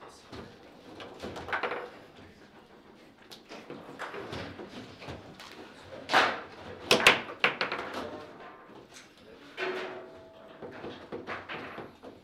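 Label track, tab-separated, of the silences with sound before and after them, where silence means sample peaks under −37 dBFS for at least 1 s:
1.870000	3.320000	silence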